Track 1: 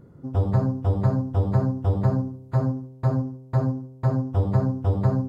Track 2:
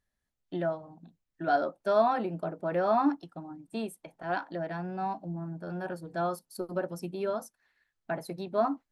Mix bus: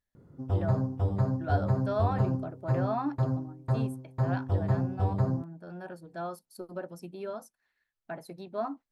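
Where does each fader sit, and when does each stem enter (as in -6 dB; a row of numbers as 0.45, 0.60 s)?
-6.0, -6.0 dB; 0.15, 0.00 s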